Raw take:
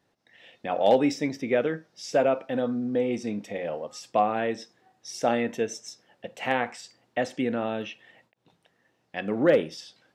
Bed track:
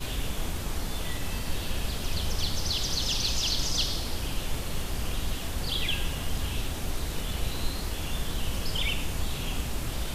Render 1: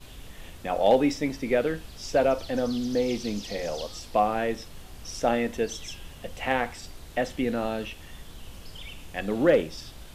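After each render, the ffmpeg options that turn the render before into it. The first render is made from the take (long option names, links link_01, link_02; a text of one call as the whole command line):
ffmpeg -i in.wav -i bed.wav -filter_complex "[1:a]volume=-13dB[link_01];[0:a][link_01]amix=inputs=2:normalize=0" out.wav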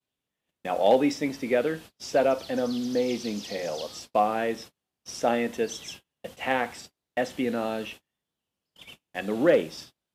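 ffmpeg -i in.wav -af "highpass=150,agate=range=-37dB:threshold=-42dB:ratio=16:detection=peak" out.wav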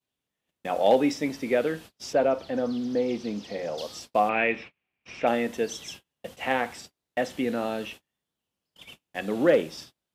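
ffmpeg -i in.wav -filter_complex "[0:a]asettb=1/sr,asplit=3[link_01][link_02][link_03];[link_01]atrim=end=2.134[link_04];[link_02]atrim=start=2.13:end=3.78,asetpts=PTS-STARTPTS,afade=type=in:duration=0.004:curve=qsin,afade=type=out:start_time=1.646:duration=0.004:curve=qsin,lowpass=frequency=2000:poles=1[link_05];[link_03]atrim=start=3.776[link_06];[link_04][link_05]acrossfade=duration=0.004:curve1=hsin:curve2=qsin[link_07];[link_07][link_06]acrossfade=duration=0.004:curve1=qsin:curve2=hsin,asettb=1/sr,asplit=3[link_08][link_09][link_10];[link_08]atrim=end=4.294[link_11];[link_09]atrim=start=4.29:end=5.27,asetpts=PTS-STARTPTS,afade=type=in:duration=0.004:curve=qsin,afade=type=out:start_time=0.976:duration=0.004:curve=qsin,lowpass=frequency=2400:width_type=q:width=7.9[link_12];[link_10]atrim=start=5.266[link_13];[link_11][link_12]acrossfade=duration=0.004:curve1=hsin:curve2=qsin[link_14];[link_14][link_13]acrossfade=duration=0.004:curve1=qsin:curve2=hsin" out.wav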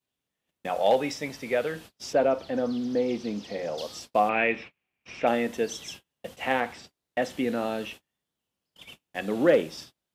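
ffmpeg -i in.wav -filter_complex "[0:a]asettb=1/sr,asplit=3[link_01][link_02][link_03];[link_01]atrim=end=0.694[link_04];[link_02]atrim=start=0.69:end=1.76,asetpts=PTS-STARTPTS,afade=type=in:duration=0.004:curve=qsin,afade=type=out:start_time=1.066:duration=0.004:curve=qsin,equalizer=frequency=290:width=1.5:gain=-9[link_05];[link_03]atrim=start=1.756[link_06];[link_04][link_05]acrossfade=duration=0.004:curve1=hsin:curve2=qsin[link_07];[link_07][link_06]acrossfade=duration=0.004:curve1=qsin:curve2=hsin,asettb=1/sr,asplit=3[link_08][link_09][link_10];[link_08]atrim=end=6.604[link_11];[link_09]atrim=start=6.6:end=7.22,asetpts=PTS-STARTPTS,afade=type=in:duration=0.004:curve=qsin,afade=type=out:start_time=0.616:duration=0.004:curve=qsin,acrossover=split=5200[link_12][link_13];[link_13]acompressor=threshold=-59dB:ratio=4:attack=1:release=60[link_14];[link_12][link_14]amix=inputs=2:normalize=0[link_15];[link_10]atrim=start=7.216[link_16];[link_11][link_15]acrossfade=duration=0.004:curve1=hsin:curve2=qsin[link_17];[link_17][link_16]acrossfade=duration=0.004:curve1=qsin:curve2=hsin" out.wav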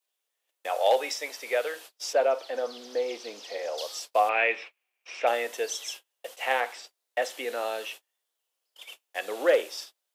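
ffmpeg -i in.wav -af "highpass=frequency=450:width=0.5412,highpass=frequency=450:width=1.3066,highshelf=frequency=4600:gain=7" out.wav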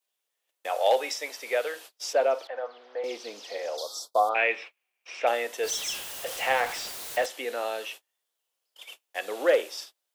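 ffmpeg -i in.wav -filter_complex "[0:a]asettb=1/sr,asplit=3[link_01][link_02][link_03];[link_01]atrim=end=2.474[link_04];[link_02]atrim=start=2.47:end=3.04,asetpts=PTS-STARTPTS,afade=type=in:duration=0.004:curve=qsin,afade=type=out:start_time=0.566:duration=0.004:curve=qsin,asuperpass=centerf=1100:order=4:qfactor=0.68[link_05];[link_03]atrim=start=3.036[link_06];[link_04][link_05]acrossfade=duration=0.004:curve1=hsin:curve2=qsin[link_07];[link_07][link_06]acrossfade=duration=0.004:curve1=qsin:curve2=hsin,asettb=1/sr,asplit=3[link_08][link_09][link_10];[link_08]atrim=end=3.774[link_11];[link_09]atrim=start=3.77:end=4.35,asetpts=PTS-STARTPTS,afade=type=in:duration=0.004:curve=qsin,afade=type=out:start_time=0.576:duration=0.004:curve=qsin,asuperstop=centerf=2200:order=12:qfactor=1.1[link_12];[link_10]atrim=start=4.346[link_13];[link_11][link_12]acrossfade=duration=0.004:curve1=hsin:curve2=qsin[link_14];[link_14][link_13]acrossfade=duration=0.004:curve1=qsin:curve2=hsin,asettb=1/sr,asplit=3[link_15][link_16][link_17];[link_15]atrim=end=5.634[link_18];[link_16]atrim=start=5.63:end=7.26,asetpts=PTS-STARTPTS,afade=type=in:duration=0.004:curve=qsin,afade=type=out:start_time=1.626:duration=0.004:curve=qsin,aeval=exprs='val(0)+0.5*0.0251*sgn(val(0))':channel_layout=same[link_19];[link_17]atrim=start=7.256[link_20];[link_18][link_19]acrossfade=duration=0.004:curve1=hsin:curve2=qsin[link_21];[link_21][link_20]acrossfade=duration=0.004:curve1=qsin:curve2=hsin" out.wav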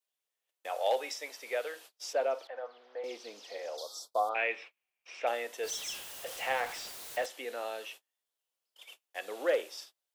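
ffmpeg -i in.wav -af "volume=-7dB" out.wav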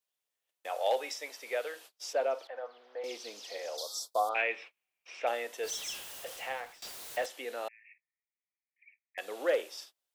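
ffmpeg -i in.wav -filter_complex "[0:a]asettb=1/sr,asplit=3[link_01][link_02][link_03];[link_01]atrim=end=3.014[link_04];[link_02]atrim=start=3.01:end=4.42,asetpts=PTS-STARTPTS,afade=type=in:duration=0.004:curve=qsin,afade=type=out:start_time=1.406:duration=0.004:curve=qsin,highshelf=frequency=3400:gain=8[link_05];[link_03]atrim=start=4.416[link_06];[link_04][link_05]acrossfade=duration=0.004:curve1=hsin:curve2=qsin[link_07];[link_07][link_06]acrossfade=duration=0.004:curve1=qsin:curve2=hsin,asettb=1/sr,asplit=3[link_08][link_09][link_10];[link_08]atrim=end=7.684[link_11];[link_09]atrim=start=7.68:end=9.18,asetpts=PTS-STARTPTS,afade=type=in:duration=0.004:curve=qsin,afade=type=out:start_time=1.496:duration=0.004:curve=qsin,asuperpass=centerf=2100:order=12:qfactor=3[link_12];[link_10]atrim=start=9.176[link_13];[link_11][link_12]acrossfade=duration=0.004:curve1=hsin:curve2=qsin[link_14];[link_14][link_13]acrossfade=duration=0.004:curve1=qsin:curve2=hsin,asplit=2[link_15][link_16];[link_15]atrim=end=6.82,asetpts=PTS-STARTPTS,afade=type=out:start_time=6.16:duration=0.66:silence=0.1[link_17];[link_16]atrim=start=6.82,asetpts=PTS-STARTPTS,afade=type=in:duration=0.004:curve=hsin:silence=0.1[link_18];[link_17][link_18]concat=n=2:v=0:a=1" out.wav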